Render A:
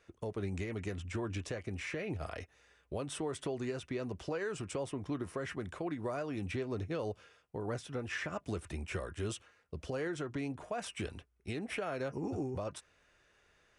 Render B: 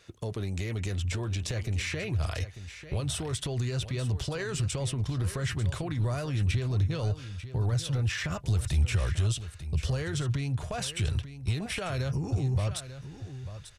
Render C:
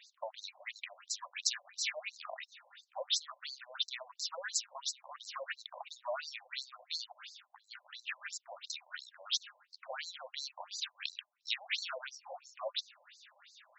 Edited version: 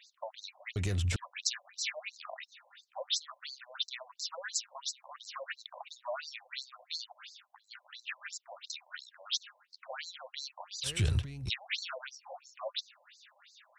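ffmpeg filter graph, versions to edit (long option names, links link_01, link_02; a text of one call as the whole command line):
ffmpeg -i take0.wav -i take1.wav -i take2.wav -filter_complex "[1:a]asplit=2[link_01][link_02];[2:a]asplit=3[link_03][link_04][link_05];[link_03]atrim=end=0.762[link_06];[link_01]atrim=start=0.758:end=1.162[link_07];[link_04]atrim=start=1.158:end=10.87[link_08];[link_02]atrim=start=10.83:end=11.5[link_09];[link_05]atrim=start=11.46[link_10];[link_06][link_07]acrossfade=duration=0.004:curve1=hsin:curve2=hsin[link_11];[link_11][link_08]acrossfade=duration=0.004:curve1=hsin:curve2=hsin[link_12];[link_12][link_09]acrossfade=duration=0.04:curve1=tri:curve2=tri[link_13];[link_13][link_10]acrossfade=duration=0.04:curve1=tri:curve2=tri" out.wav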